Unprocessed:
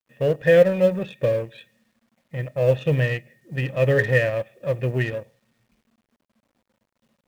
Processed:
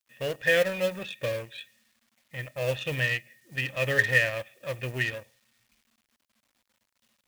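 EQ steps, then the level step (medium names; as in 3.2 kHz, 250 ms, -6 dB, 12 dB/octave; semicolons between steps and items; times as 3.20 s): tilt shelf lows -7 dB, about 1.5 kHz; peaking EQ 160 Hz -8.5 dB 0.57 oct; peaking EQ 450 Hz -5.5 dB 1.1 oct; 0.0 dB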